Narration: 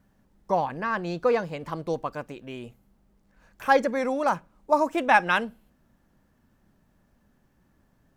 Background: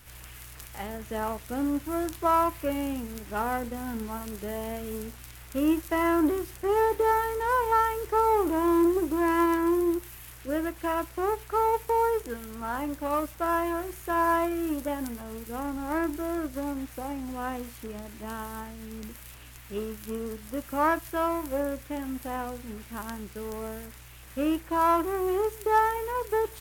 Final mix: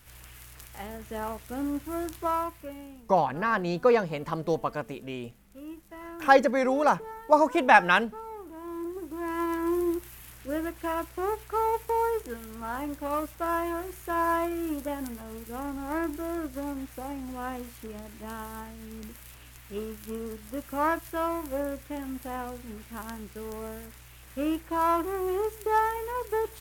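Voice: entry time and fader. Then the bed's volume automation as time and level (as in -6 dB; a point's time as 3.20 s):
2.60 s, +1.5 dB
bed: 2.21 s -3 dB
3.08 s -18 dB
8.46 s -18 dB
9.78 s -2 dB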